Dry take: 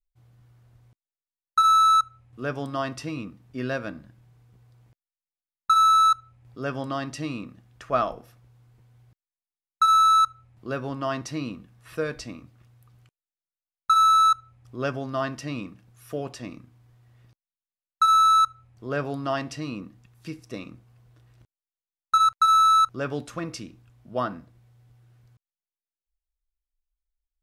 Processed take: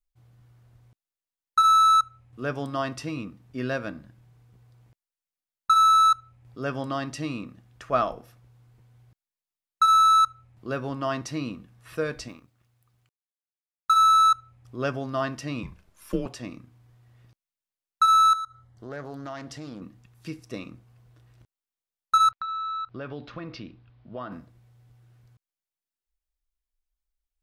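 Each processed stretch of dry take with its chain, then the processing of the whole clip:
0:12.28–0:13.97: mu-law and A-law mismatch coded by A + low-shelf EQ 490 Hz −4 dB
0:15.63–0:16.26: transient designer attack +6 dB, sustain +1 dB + frequency shifter −120 Hz
0:18.33–0:19.82: downward compressor 2.5 to 1, threshold −37 dBFS + Butterworth band-reject 2,500 Hz, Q 3.9 + highs frequency-modulated by the lows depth 0.22 ms
0:22.31–0:24.32: Butterworth low-pass 4,500 Hz + downward compressor 4 to 1, threshold −33 dBFS
whole clip: no processing

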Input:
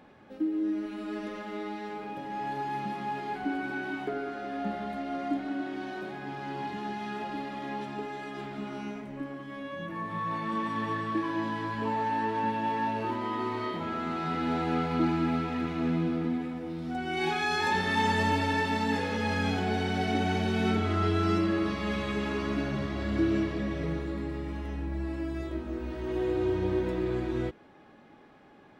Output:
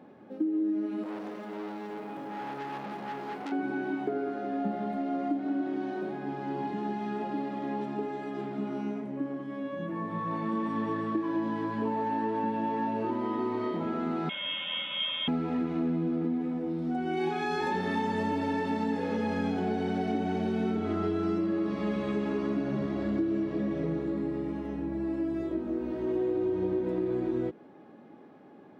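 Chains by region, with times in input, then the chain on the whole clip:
0:01.03–0:03.52: high-shelf EQ 3,300 Hz +7.5 dB + bit-depth reduction 10 bits, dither none + saturating transformer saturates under 3,400 Hz
0:14.29–0:15.28: voice inversion scrambler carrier 3,500 Hz + comb filter 3.1 ms, depth 37%
whole clip: high-pass filter 200 Hz 12 dB per octave; tilt shelving filter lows +8 dB, about 870 Hz; downward compressor, threshold −26 dBFS

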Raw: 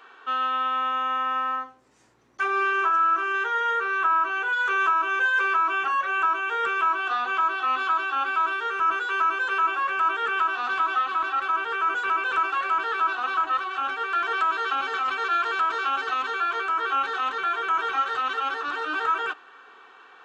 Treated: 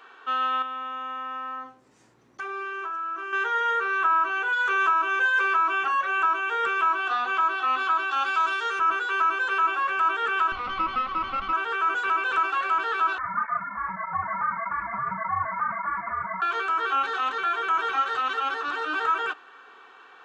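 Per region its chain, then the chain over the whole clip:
0:00.62–0:03.33: high-pass filter 74 Hz + parametric band 160 Hz +4.5 dB 2.7 octaves + downward compressor 3 to 1, threshold −33 dBFS
0:08.11–0:08.79: Bessel low-pass filter 6,000 Hz + bass and treble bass −9 dB, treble +15 dB
0:10.52–0:11.53: lower of the sound and its delayed copy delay 0.89 ms + high-frequency loss of the air 290 metres
0:13.18–0:16.42: voice inversion scrambler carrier 2,500 Hz + mains-hum notches 60/120/180/240/300/360 Hz + through-zero flanger with one copy inverted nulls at 1.7 Hz, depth 6.7 ms
whole clip: no processing

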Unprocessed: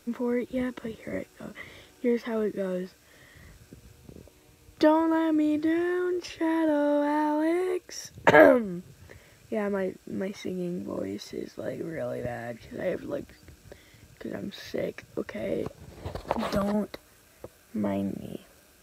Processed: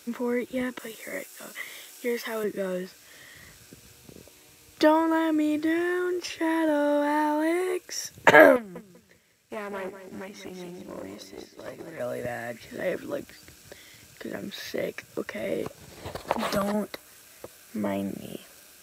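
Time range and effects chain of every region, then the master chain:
0:00.79–0:02.44: high-pass filter 470 Hz 6 dB per octave + high-shelf EQ 5,400 Hz +9.5 dB
0:08.56–0:12.00: repeating echo 194 ms, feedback 34%, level −8.5 dB + tube saturation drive 27 dB, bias 0.6 + expander for the loud parts, over −54 dBFS
whole clip: dynamic equaliser 4,300 Hz, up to −4 dB, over −55 dBFS, Q 1.1; high-pass filter 130 Hz 6 dB per octave; tilt shelving filter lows −4.5 dB, about 1,500 Hz; level +4.5 dB

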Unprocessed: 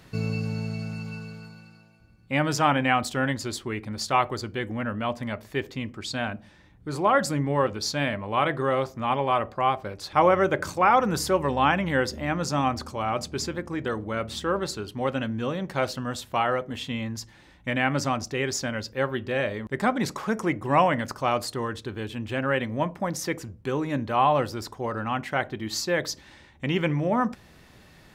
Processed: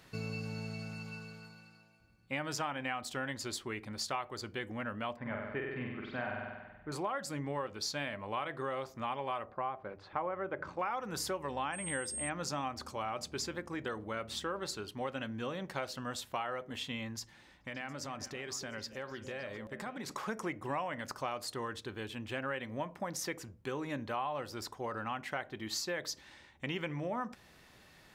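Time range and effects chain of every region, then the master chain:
0:05.16–0:06.92: low-pass filter 2,200 Hz 24 dB per octave + flutter between parallel walls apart 8.2 metres, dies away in 1.1 s
0:09.45–0:10.79: low-pass filter 1,700 Hz + mains-hum notches 50/100/150 Hz
0:11.72–0:12.28: steady tone 8,500 Hz −30 dBFS + Butterworth band-reject 4,300 Hz, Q 5
0:17.18–0:20.12: downward compressor, threshold −31 dBFS + echo through a band-pass that steps 141 ms, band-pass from 180 Hz, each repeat 1.4 octaves, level −6 dB
whole clip: low-shelf EQ 380 Hz −7.5 dB; downward compressor 6 to 1, threshold −29 dBFS; level −4.5 dB

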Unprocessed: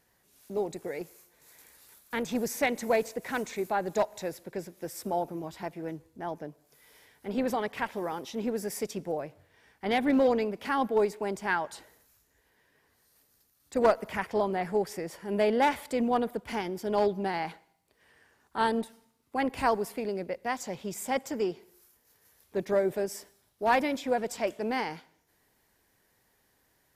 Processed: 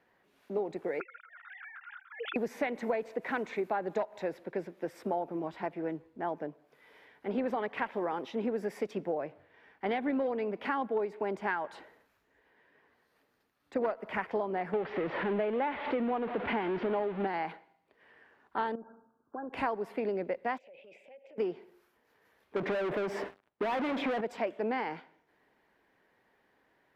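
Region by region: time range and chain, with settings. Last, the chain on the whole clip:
0:01.00–0:02.36: three sine waves on the formant tracks + high-pass with resonance 1,400 Hz, resonance Q 11 + compressor whose output falls as the input rises −42 dBFS
0:14.73–0:17.27: converter with a step at zero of −28.5 dBFS + low-pass filter 3,500 Hz 24 dB per octave + one half of a high-frequency compander decoder only
0:18.75–0:19.53: downward compressor, threshold −39 dBFS + linear-phase brick-wall low-pass 1,700 Hz
0:20.58–0:21.38: pair of resonant band-passes 1,200 Hz, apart 2.2 octaves + downward compressor 12 to 1, threshold −51 dBFS + transient designer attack −6 dB, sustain +9 dB
0:22.56–0:24.21: low-pass filter 1,700 Hz 6 dB per octave + hard clipping −27 dBFS + leveller curve on the samples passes 5
whole clip: three-way crossover with the lows and the highs turned down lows −13 dB, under 190 Hz, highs −24 dB, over 3,100 Hz; downward compressor 10 to 1, threshold −31 dBFS; level +3 dB

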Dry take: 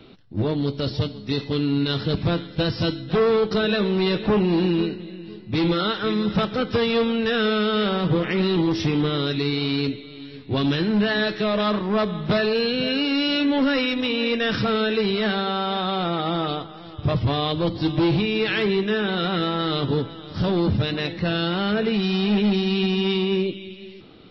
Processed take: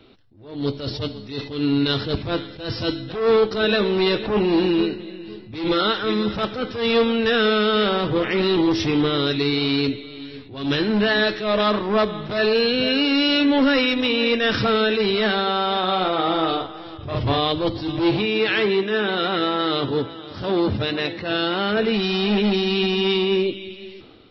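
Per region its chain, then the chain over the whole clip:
0:15.79–0:17.38: bass and treble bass −2 dB, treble −3 dB + double-tracking delay 43 ms −5.5 dB
0:18.10–0:21.77: high-pass filter 140 Hz 6 dB per octave + high-frequency loss of the air 65 metres
whole clip: parametric band 170 Hz −11 dB 0.44 octaves; automatic gain control gain up to 7 dB; level that may rise only so fast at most 100 dB per second; level −3 dB

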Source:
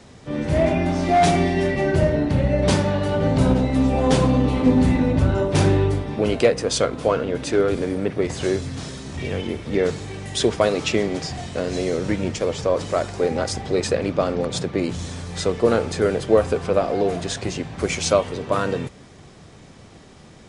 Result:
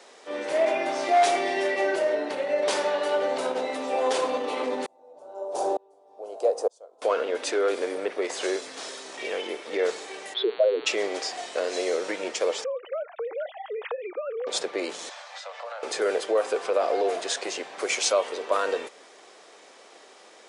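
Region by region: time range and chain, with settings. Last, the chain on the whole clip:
0:04.86–0:07.02: drawn EQ curve 150 Hz 0 dB, 240 Hz −7 dB, 360 Hz −1 dB, 750 Hz +8 dB, 2,000 Hz −21 dB, 6,800 Hz −2 dB + tremolo with a ramp in dB swelling 1.1 Hz, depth 35 dB
0:10.33–0:10.85: expanding power law on the bin magnitudes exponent 2.9 + low-pass filter 3,300 Hz 24 dB per octave + hum with harmonics 120 Hz, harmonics 37, −43 dBFS −2 dB per octave
0:12.64–0:14.47: three sine waves on the formant tracks + downward compressor 8 to 1, threshold −27 dBFS
0:15.09–0:15.83: Butterworth high-pass 560 Hz 72 dB per octave + downward compressor, threshold −33 dBFS + high-frequency loss of the air 110 metres
whole clip: brickwall limiter −12 dBFS; high-pass filter 420 Hz 24 dB per octave

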